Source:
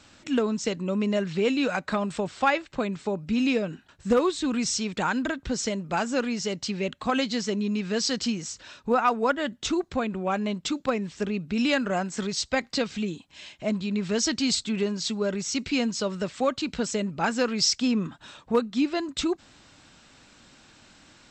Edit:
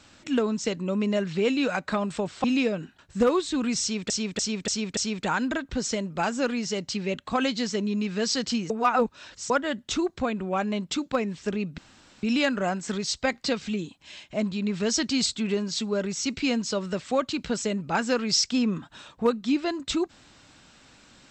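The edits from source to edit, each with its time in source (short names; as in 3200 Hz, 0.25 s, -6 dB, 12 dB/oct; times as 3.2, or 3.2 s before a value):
2.44–3.34 cut
4.71–5 loop, 5 plays
8.44–9.24 reverse
11.52 insert room tone 0.45 s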